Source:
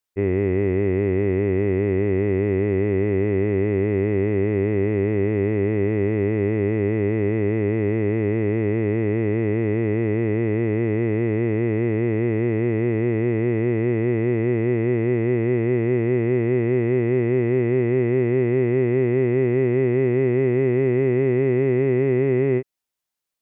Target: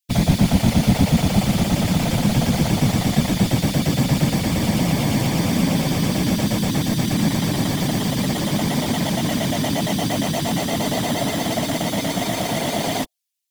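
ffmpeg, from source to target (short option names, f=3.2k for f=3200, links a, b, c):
-filter_complex "[0:a]asplit=2[a][b];[b]aeval=exprs='(mod(15*val(0)+1,2)-1)/15':c=same,volume=-4.5dB[c];[a][c]amix=inputs=2:normalize=0,lowshelf=f=130:t=q:w=3:g=11,bandreject=f=50:t=h:w=6,bandreject=f=100:t=h:w=6,bandreject=f=150:t=h:w=6,bandreject=f=200:t=h:w=6,bandreject=f=250:t=h:w=6,bandreject=f=300:t=h:w=6,bandreject=f=350:t=h:w=6,bandreject=f=400:t=h:w=6,acrossover=split=260|1300[d][e][f];[d]aeval=exprs='sgn(val(0))*max(abs(val(0))-0.0211,0)':c=same[g];[e]acrusher=bits=3:mix=0:aa=0.000001[h];[f]acontrast=82[i];[g][h][i]amix=inputs=3:normalize=0,asetrate=76440,aresample=44100,afftfilt=real='hypot(re,im)*cos(2*PI*random(0))':imag='hypot(re,im)*sin(2*PI*random(1))':win_size=512:overlap=0.75,volume=2dB"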